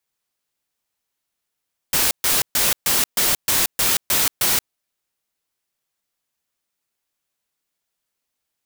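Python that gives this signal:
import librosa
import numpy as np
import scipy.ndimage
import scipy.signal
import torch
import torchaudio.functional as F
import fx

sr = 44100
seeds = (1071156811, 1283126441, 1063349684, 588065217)

y = fx.noise_burst(sr, seeds[0], colour='white', on_s=0.18, off_s=0.13, bursts=9, level_db=-18.0)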